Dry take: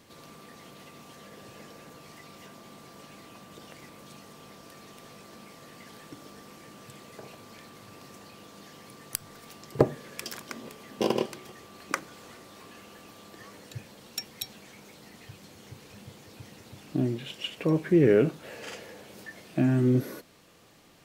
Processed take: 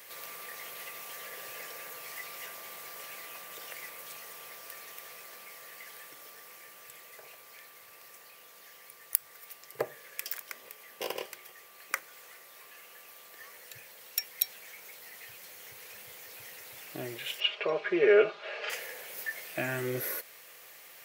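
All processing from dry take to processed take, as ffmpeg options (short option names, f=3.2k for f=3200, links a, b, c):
-filter_complex "[0:a]asettb=1/sr,asplit=3[a][b][c];[a]atrim=end=17.404[d];[b]atrim=start=17.4:end=18.7,asetpts=PTS-STARTPTS,afade=t=in:d=0.004:c=qsin,afade=t=out:st=1.296:d=0.004:c=qsin,highpass=300,equalizer=f=330:t=q:w=4:g=4,equalizer=f=660:t=q:w=4:g=4,equalizer=f=1.2k:t=q:w=4:g=5,equalizer=f=1.9k:t=q:w=4:g=-7,lowpass=f=4.2k:w=0.5412,lowpass=f=4.2k:w=1.3066,aecho=1:1:4.9:0.81,atrim=end_sample=57330[e];[c]atrim=start=18.696[f];[d][e]acrossfade=d=0.004:c1=hsin:c2=qsin[g];[g][f]acrossfade=d=0.004:c1=qsin:c2=hsin,aemphasis=mode=production:type=riaa,dynaudnorm=f=900:g=11:m=11.5dB,equalizer=f=250:t=o:w=1:g=-12,equalizer=f=500:t=o:w=1:g=6,equalizer=f=2k:t=o:w=1:g=9,equalizer=f=4k:t=o:w=1:g=-3,equalizer=f=8k:t=o:w=1:g=-4"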